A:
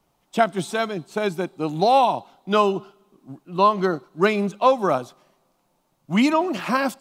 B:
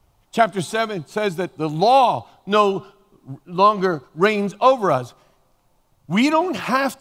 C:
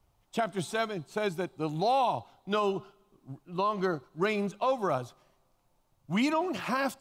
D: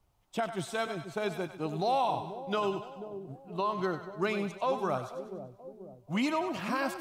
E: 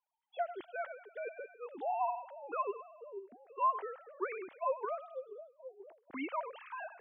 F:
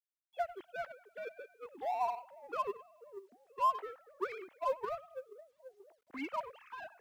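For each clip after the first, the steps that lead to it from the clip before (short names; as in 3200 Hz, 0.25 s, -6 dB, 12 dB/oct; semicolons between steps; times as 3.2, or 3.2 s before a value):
resonant low shelf 130 Hz +12 dB, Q 1.5; gain +3 dB
limiter -9.5 dBFS, peak gain reduction 7.5 dB; gain -9 dB
split-band echo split 630 Hz, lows 0.485 s, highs 97 ms, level -9.5 dB; gain -2.5 dB
sine-wave speech; gain -6.5 dB
G.711 law mismatch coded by A; gain +1.5 dB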